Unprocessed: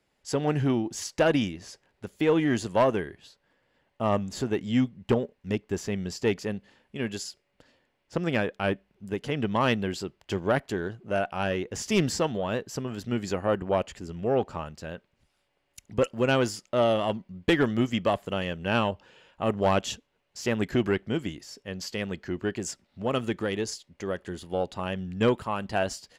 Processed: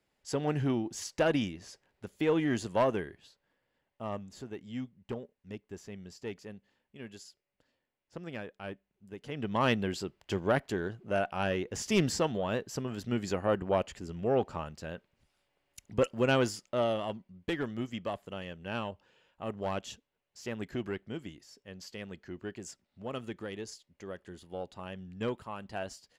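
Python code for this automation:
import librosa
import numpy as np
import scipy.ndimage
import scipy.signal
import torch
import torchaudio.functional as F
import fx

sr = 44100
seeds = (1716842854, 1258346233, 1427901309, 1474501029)

y = fx.gain(x, sr, db=fx.line((3.04, -5.0), (4.43, -14.5), (9.11, -14.5), (9.64, -3.0), (16.43, -3.0), (17.38, -11.0)))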